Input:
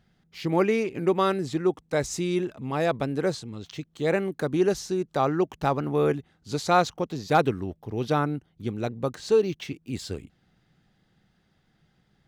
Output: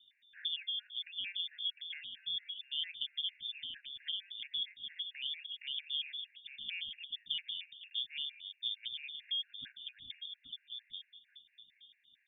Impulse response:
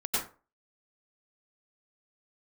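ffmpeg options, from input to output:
-filter_complex "[0:a]alimiter=limit=-16.5dB:level=0:latency=1:release=166,acompressor=threshold=-37dB:ratio=5,aecho=1:1:832|1664|2496:0.422|0.118|0.0331,asplit=2[link_01][link_02];[1:a]atrim=start_sample=2205,adelay=27[link_03];[link_02][link_03]afir=irnorm=-1:irlink=0,volume=-25.5dB[link_04];[link_01][link_04]amix=inputs=2:normalize=0,lowpass=frequency=3100:width_type=q:width=0.5098,lowpass=frequency=3100:width_type=q:width=0.6013,lowpass=frequency=3100:width_type=q:width=0.9,lowpass=frequency=3100:width_type=q:width=2.563,afreqshift=-3700,asuperstop=centerf=690:order=20:qfactor=0.52,afftfilt=real='re*gt(sin(2*PI*4.4*pts/sr)*(1-2*mod(floor(b*sr/1024/1400),2)),0)':imag='im*gt(sin(2*PI*4.4*pts/sr)*(1-2*mod(floor(b*sr/1024/1400),2)),0)':win_size=1024:overlap=0.75,volume=1dB"

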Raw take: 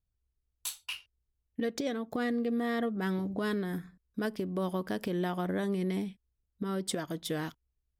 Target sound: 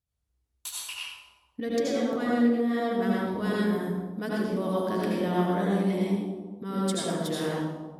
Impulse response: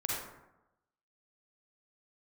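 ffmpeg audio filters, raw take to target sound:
-filter_complex "[0:a]highpass=61[link_01];[1:a]atrim=start_sample=2205,asetrate=25137,aresample=44100[link_02];[link_01][link_02]afir=irnorm=-1:irlink=0,asettb=1/sr,asplit=3[link_03][link_04][link_05];[link_03]atrim=end=2.574[link_06];[link_04]atrim=start=2.57:end=2.99,asetpts=PTS-STARTPTS,afade=type=in:duration=0.004:curve=qsin,afade=type=out:start_time=0.416:duration=0.004:curve=qsin,acompressor=threshold=-20dB:ratio=6[link_07];[link_05]atrim=start=2.986[link_08];[link_06][link_07]acrossfade=duration=0.004:curve1=hsin:curve2=qsin[link_09];[link_09][link_08]acrossfade=duration=0.004:curve1=qsin:curve2=hsin,volume=-3dB"

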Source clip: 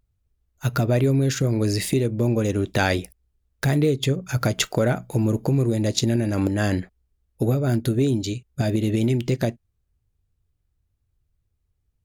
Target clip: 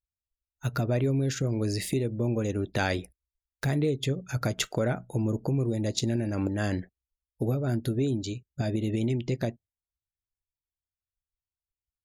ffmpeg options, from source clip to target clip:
ffmpeg -i in.wav -af "afftdn=noise_reduction=23:noise_floor=-45,volume=-6.5dB" out.wav

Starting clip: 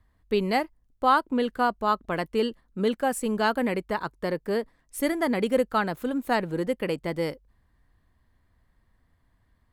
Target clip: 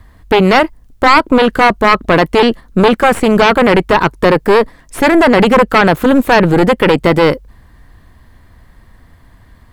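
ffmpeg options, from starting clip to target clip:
ffmpeg -i in.wav -filter_complex "[0:a]aeval=exprs='0.376*(cos(1*acos(clip(val(0)/0.376,-1,1)))-cos(1*PI/2))+0.15*(cos(4*acos(clip(val(0)/0.376,-1,1)))-cos(4*PI/2))':channel_layout=same,acrossover=split=3400[link_01][link_02];[link_02]acompressor=threshold=-52dB:ratio=4:attack=1:release=60[link_03];[link_01][link_03]amix=inputs=2:normalize=0,apsyclip=24.5dB,volume=-1.5dB" out.wav

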